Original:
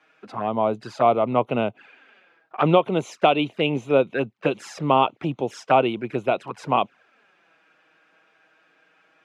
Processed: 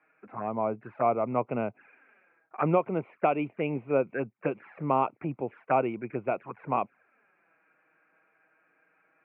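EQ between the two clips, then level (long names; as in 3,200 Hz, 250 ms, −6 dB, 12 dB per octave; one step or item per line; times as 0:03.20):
Chebyshev low-pass filter 2,400 Hz, order 5
−6.5 dB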